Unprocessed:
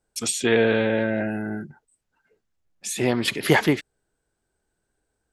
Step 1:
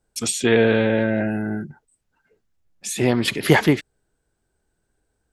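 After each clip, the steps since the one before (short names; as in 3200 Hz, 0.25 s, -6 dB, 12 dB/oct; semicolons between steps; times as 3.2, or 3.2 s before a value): low shelf 230 Hz +5 dB; gain +1.5 dB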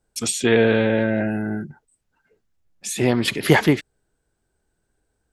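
nothing audible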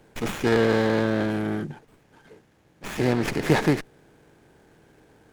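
per-bin compression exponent 0.6; running maximum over 9 samples; gain -6.5 dB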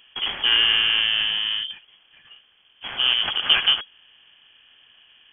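inverted band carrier 3300 Hz; gain +1.5 dB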